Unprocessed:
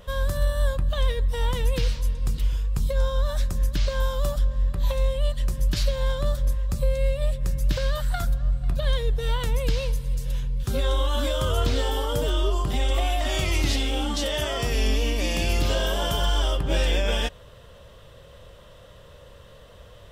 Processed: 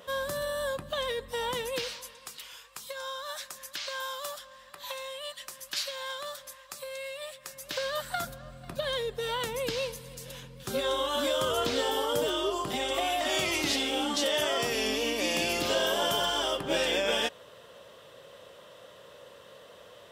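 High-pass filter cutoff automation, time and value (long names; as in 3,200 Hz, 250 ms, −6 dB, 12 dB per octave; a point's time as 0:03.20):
0:01.51 280 Hz
0:02.33 970 Hz
0:07.41 970 Hz
0:08.17 270 Hz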